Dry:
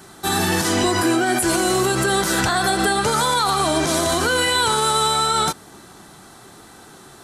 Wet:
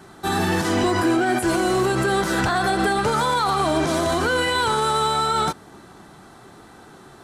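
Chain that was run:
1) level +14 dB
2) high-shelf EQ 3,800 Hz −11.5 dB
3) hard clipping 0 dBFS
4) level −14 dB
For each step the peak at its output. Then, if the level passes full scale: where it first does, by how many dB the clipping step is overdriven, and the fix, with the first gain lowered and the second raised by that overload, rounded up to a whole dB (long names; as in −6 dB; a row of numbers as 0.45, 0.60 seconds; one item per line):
+5.0, +4.0, 0.0, −14.0 dBFS
step 1, 4.0 dB
step 1 +10 dB, step 4 −10 dB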